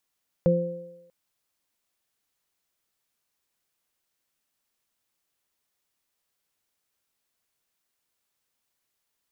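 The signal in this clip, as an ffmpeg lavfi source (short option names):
-f lavfi -i "aevalsrc='0.126*pow(10,-3*t/0.78)*sin(2*PI*173*t)+0.0355*pow(10,-3*t/0.84)*sin(2*PI*346*t)+0.133*pow(10,-3*t/1.01)*sin(2*PI*519*t)':d=0.64:s=44100"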